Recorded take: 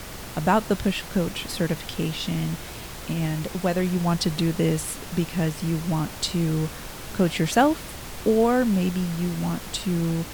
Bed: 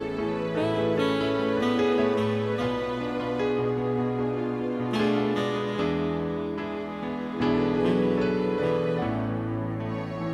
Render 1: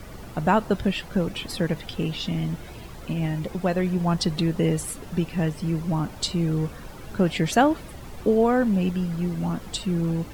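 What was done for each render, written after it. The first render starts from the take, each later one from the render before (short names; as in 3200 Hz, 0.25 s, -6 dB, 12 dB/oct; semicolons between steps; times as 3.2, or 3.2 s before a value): denoiser 11 dB, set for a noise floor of -38 dBFS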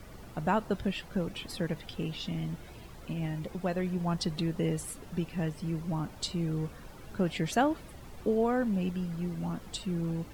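gain -8 dB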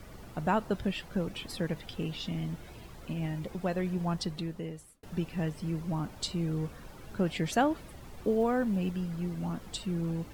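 4.02–5.03 fade out; 7.85–9.02 block floating point 7-bit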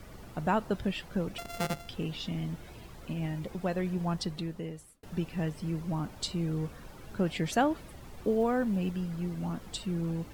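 1.38–1.89 sample sorter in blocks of 64 samples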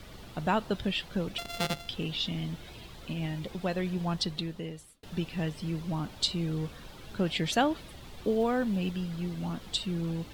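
bell 3600 Hz +9.5 dB 1 oct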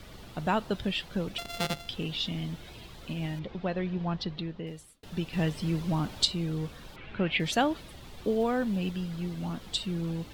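3.39–4.67 Gaussian blur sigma 2 samples; 5.33–6.25 gain +4 dB; 6.96–7.4 synth low-pass 2400 Hz, resonance Q 2.9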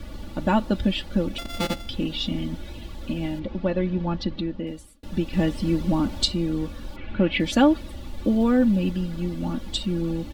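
low shelf 460 Hz +10.5 dB; comb 3.5 ms, depth 83%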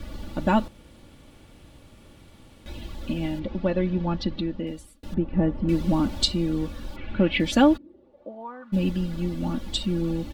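0.68–2.66 room tone; 5.14–5.69 LPF 1200 Hz; 7.76–8.72 band-pass 270 Hz -> 1400 Hz, Q 6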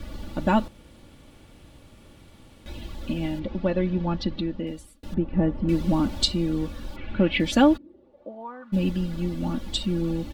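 nothing audible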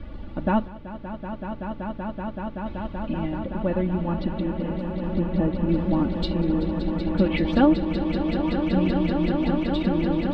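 air absorption 380 m; swelling echo 0.19 s, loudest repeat 8, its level -10.5 dB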